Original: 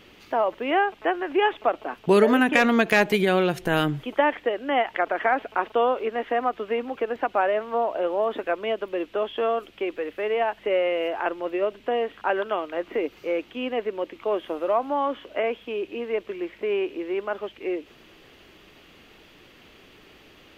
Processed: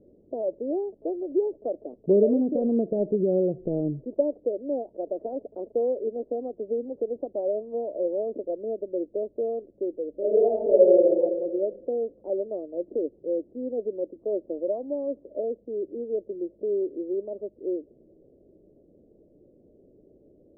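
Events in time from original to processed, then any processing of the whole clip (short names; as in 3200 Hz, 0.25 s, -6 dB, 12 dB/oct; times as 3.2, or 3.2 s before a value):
10.1–11.09 reverb throw, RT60 1.5 s, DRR -7.5 dB
whole clip: Chebyshev low-pass 590 Hz, order 5; low shelf 130 Hz -7 dB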